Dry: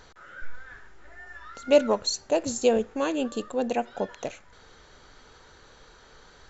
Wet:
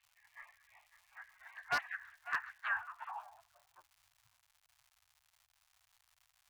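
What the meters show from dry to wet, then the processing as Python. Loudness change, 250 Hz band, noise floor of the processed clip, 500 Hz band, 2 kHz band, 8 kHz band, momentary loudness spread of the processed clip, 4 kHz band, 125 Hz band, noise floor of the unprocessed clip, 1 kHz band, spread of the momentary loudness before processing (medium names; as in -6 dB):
-13.5 dB, under -35 dB, -78 dBFS, -34.0 dB, -0.5 dB, no reading, 20 LU, -18.5 dB, under -20 dB, -54 dBFS, -10.0 dB, 22 LU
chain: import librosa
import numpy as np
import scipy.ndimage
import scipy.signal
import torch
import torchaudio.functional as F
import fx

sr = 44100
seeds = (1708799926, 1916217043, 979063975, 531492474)

y = fx.wah_lfo(x, sr, hz=2.8, low_hz=570.0, high_hz=1700.0, q=3.6)
y = fx.spec_gate(y, sr, threshold_db=-30, keep='weak')
y = fx.low_shelf(y, sr, hz=160.0, db=-10.0)
y = fx.echo_feedback(y, sr, ms=551, feedback_pct=22, wet_db=-14.5)
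y = fx.filter_sweep_lowpass(y, sr, from_hz=1700.0, to_hz=220.0, start_s=2.73, end_s=4.08, q=5.7)
y = fx.high_shelf(y, sr, hz=4600.0, db=-5.5)
y = fx.dmg_crackle(y, sr, seeds[0], per_s=270.0, level_db=-69.0)
y = scipy.signal.sosfilt(scipy.signal.cheby2(4, 40, [160.0, 460.0], 'bandstop', fs=sr, output='sos'), y)
y = 10.0 ** (-39.5 / 20.0) * (np.abs((y / 10.0 ** (-39.5 / 20.0) + 3.0) % 4.0 - 2.0) - 1.0)
y = F.gain(torch.from_numpy(y), 14.5).numpy()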